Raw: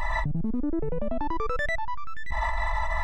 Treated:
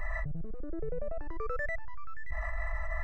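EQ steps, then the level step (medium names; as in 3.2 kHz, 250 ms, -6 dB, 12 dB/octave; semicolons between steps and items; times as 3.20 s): treble shelf 5 kHz -11.5 dB; static phaser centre 920 Hz, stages 6; -5.0 dB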